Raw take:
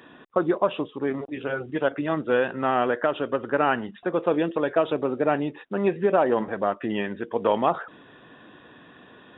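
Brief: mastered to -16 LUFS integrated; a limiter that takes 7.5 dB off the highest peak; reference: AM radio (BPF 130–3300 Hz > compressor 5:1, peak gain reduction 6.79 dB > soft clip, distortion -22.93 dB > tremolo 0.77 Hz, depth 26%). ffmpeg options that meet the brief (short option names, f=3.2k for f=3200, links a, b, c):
-af "alimiter=limit=-16dB:level=0:latency=1,highpass=130,lowpass=3.3k,acompressor=threshold=-27dB:ratio=5,asoftclip=threshold=-20dB,tremolo=f=0.77:d=0.26,volume=18.5dB"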